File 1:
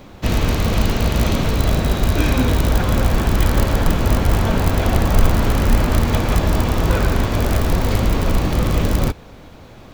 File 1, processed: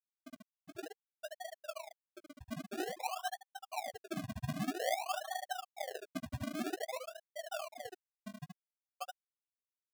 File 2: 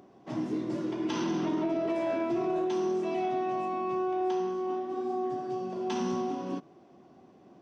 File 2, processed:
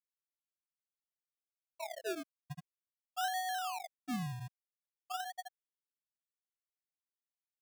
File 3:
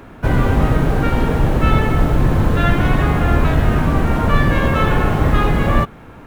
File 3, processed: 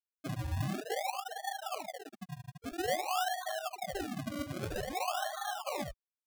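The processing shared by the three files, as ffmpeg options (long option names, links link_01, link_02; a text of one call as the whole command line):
ffmpeg -i in.wav -filter_complex "[0:a]asplit=3[link_01][link_02][link_03];[link_01]bandpass=frequency=730:width_type=q:width=8,volume=0dB[link_04];[link_02]bandpass=frequency=1090:width_type=q:width=8,volume=-6dB[link_05];[link_03]bandpass=frequency=2440:width_type=q:width=8,volume=-9dB[link_06];[link_04][link_05][link_06]amix=inputs=3:normalize=0,bandreject=frequency=700:width=12,adynamicequalizer=threshold=0.00251:dfrequency=280:dqfactor=0.95:tfrequency=280:tqfactor=0.95:attack=5:release=100:ratio=0.375:range=1.5:mode=cutabove:tftype=bell,afftfilt=real='re*gte(hypot(re,im),0.141)':imag='im*gte(hypot(re,im),0.141)':win_size=1024:overlap=0.75,aresample=8000,aresample=44100,firequalizer=gain_entry='entry(180,0);entry(800,3);entry(1200,-10);entry(2500,-25)':delay=0.05:min_phase=1,alimiter=level_in=7dB:limit=-24dB:level=0:latency=1:release=75,volume=-7dB,aecho=1:1:15|75:0.335|0.596,acrusher=samples=34:mix=1:aa=0.000001:lfo=1:lforange=34:lforate=0.51,volume=1.5dB" out.wav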